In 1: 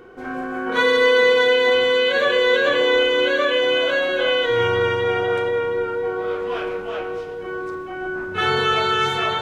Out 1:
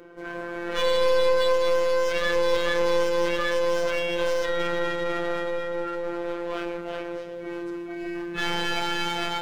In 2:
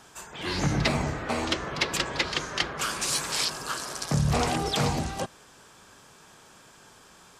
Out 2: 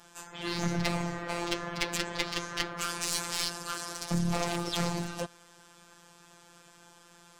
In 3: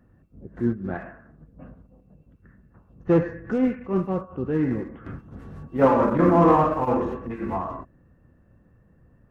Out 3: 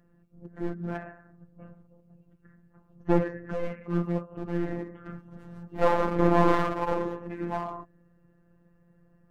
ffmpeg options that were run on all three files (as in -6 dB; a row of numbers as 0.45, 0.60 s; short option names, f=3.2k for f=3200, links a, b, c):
-af "aeval=exprs='clip(val(0),-1,0.0447)':c=same,afftfilt=real='hypot(re,im)*cos(PI*b)':imag='0':win_size=1024:overlap=0.75"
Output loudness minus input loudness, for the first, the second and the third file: -7.0, -5.0, -6.0 LU